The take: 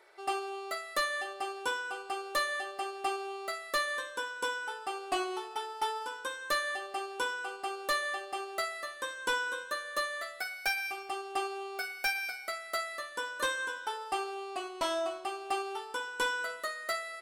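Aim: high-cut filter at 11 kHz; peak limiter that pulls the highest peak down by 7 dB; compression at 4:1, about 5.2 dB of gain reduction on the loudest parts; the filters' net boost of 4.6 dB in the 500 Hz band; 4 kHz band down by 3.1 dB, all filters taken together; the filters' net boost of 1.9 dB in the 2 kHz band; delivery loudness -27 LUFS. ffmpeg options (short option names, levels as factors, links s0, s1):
-af "lowpass=11000,equalizer=f=500:t=o:g=6,equalizer=f=2000:t=o:g=3,equalizer=f=4000:t=o:g=-5,acompressor=threshold=0.0282:ratio=4,volume=3.16,alimiter=limit=0.126:level=0:latency=1"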